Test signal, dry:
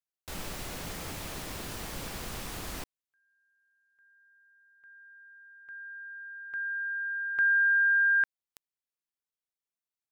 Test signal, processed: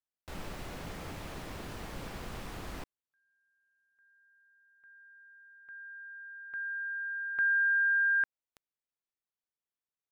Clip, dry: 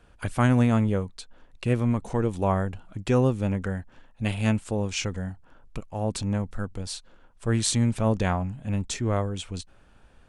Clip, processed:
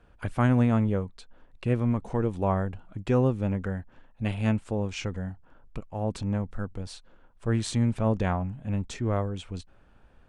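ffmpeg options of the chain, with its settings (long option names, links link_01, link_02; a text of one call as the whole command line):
ffmpeg -i in.wav -af "highshelf=frequency=3900:gain=-12,volume=-1.5dB" out.wav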